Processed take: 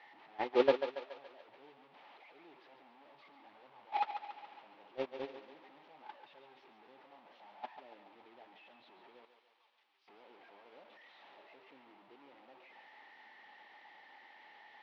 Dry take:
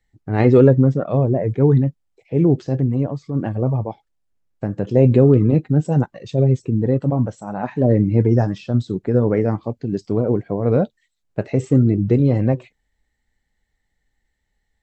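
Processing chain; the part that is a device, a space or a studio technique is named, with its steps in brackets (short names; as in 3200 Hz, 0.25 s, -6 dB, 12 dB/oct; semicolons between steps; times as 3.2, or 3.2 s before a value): digital answering machine (BPF 310–3100 Hz; delta modulation 32 kbps, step -16.5 dBFS; speaker cabinet 380–3400 Hz, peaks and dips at 470 Hz -6 dB, 860 Hz +9 dB, 1500 Hz -4 dB); gate -14 dBFS, range -39 dB; 9.25–10.08 differentiator; thinning echo 0.141 s, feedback 57%, high-pass 370 Hz, level -8 dB; gain +2.5 dB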